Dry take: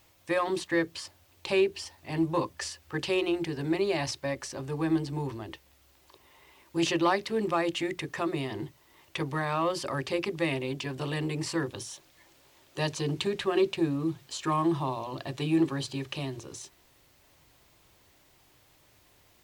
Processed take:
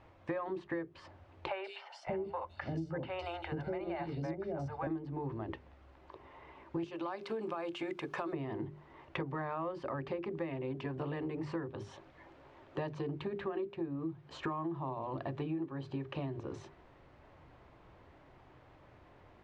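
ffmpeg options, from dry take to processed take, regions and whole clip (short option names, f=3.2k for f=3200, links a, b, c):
-filter_complex "[0:a]asettb=1/sr,asplit=3[a][b][c];[a]atrim=end=1.484[d];[b]atrim=start=1.48:end=4.87,asetpts=PTS-STARTPTS,afade=t=in:d=0.004:c=qsin,afade=t=out:st=3.386:d=0.004:c=qsin,bandreject=f=50:t=h:w=6,bandreject=f=100:t=h:w=6,bandreject=f=150:t=h:w=6,bandreject=f=200:t=h:w=6,bandreject=f=250:t=h:w=6,aecho=1:1:1.4:0.49,atrim=end_sample=149499,acrossover=split=580|3500[e][f][g];[g]adelay=160[h];[e]adelay=590[i];[i][f][h]amix=inputs=3:normalize=0,atrim=end_sample=149499[j];[c]atrim=start=4.866[k];[d][j]acrossfade=d=0.004:c1=hsin:c2=qsin[l];[l][k]acrossfade=d=0.004:c1=qsin:c2=hsin,asettb=1/sr,asplit=3[m][n][o];[m]atrim=end=6.844[p];[n]atrim=start=6.84:end=8.33,asetpts=PTS-STARTPTS,afade=t=in:d=0.004:c=qsin,afade=t=out:st=1.486:d=0.004:c=qsin,aemphasis=mode=production:type=riaa,bandreject=f=1.9k:w=6,acompressor=threshold=-29dB:ratio=5:attack=3.2:release=140:knee=1:detection=peak[q];[o]atrim=start=8.326[r];[p][q]acrossfade=d=0.004:c1=hsin:c2=qsin[s];[s][r]acrossfade=d=0.004:c1=qsin:c2=hsin,lowpass=1.4k,bandreject=f=50:t=h:w=6,bandreject=f=100:t=h:w=6,bandreject=f=150:t=h:w=6,bandreject=f=200:t=h:w=6,bandreject=f=250:t=h:w=6,bandreject=f=300:t=h:w=6,bandreject=f=350:t=h:w=6,bandreject=f=400:t=h:w=6,acompressor=threshold=-42dB:ratio=10,volume=7dB"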